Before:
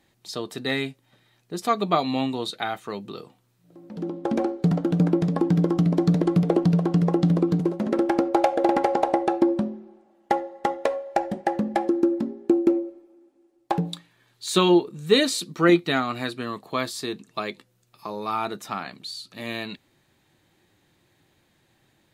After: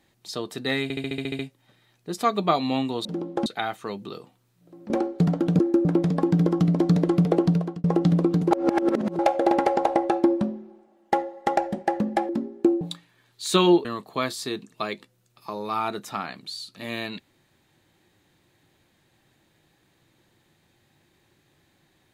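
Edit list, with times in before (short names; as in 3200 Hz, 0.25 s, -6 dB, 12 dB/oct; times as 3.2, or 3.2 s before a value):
0.83 stutter 0.07 s, 9 plays
3.93–4.34 move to 2.49
6.65–7.02 fade out
7.69–8.37 reverse
10.75–11.16 cut
11.88–12.14 move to 5.03
12.66–13.83 cut
14.87–16.42 cut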